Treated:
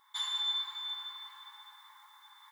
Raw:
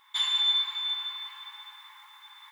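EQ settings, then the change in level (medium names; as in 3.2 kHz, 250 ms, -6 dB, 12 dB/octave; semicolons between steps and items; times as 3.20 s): peaking EQ 2.6 kHz -13.5 dB 0.68 oct; -3.0 dB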